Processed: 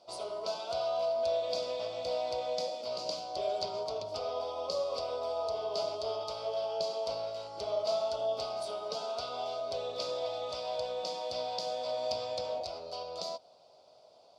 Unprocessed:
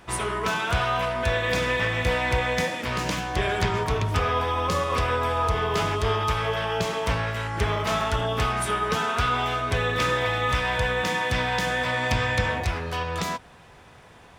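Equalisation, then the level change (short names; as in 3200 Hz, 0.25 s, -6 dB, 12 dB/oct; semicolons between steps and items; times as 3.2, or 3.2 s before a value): double band-pass 1700 Hz, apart 2.9 oct; bell 1400 Hz +6 dB 0.37 oct; +2.5 dB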